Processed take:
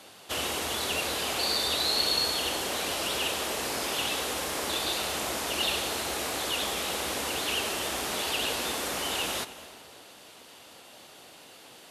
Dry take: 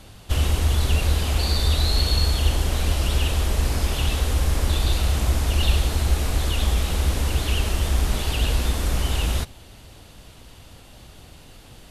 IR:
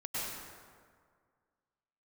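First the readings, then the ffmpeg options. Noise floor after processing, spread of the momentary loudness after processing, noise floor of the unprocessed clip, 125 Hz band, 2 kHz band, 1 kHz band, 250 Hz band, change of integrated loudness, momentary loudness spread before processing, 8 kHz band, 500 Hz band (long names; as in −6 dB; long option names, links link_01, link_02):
−51 dBFS, 5 LU, −46 dBFS, −26.0 dB, 0.0 dB, 0.0 dB, −7.0 dB, −5.5 dB, 3 LU, 0.0 dB, −1.0 dB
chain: -filter_complex "[0:a]highpass=370,asplit=2[link_01][link_02];[1:a]atrim=start_sample=2205,adelay=103[link_03];[link_02][link_03]afir=irnorm=-1:irlink=0,volume=-18dB[link_04];[link_01][link_04]amix=inputs=2:normalize=0"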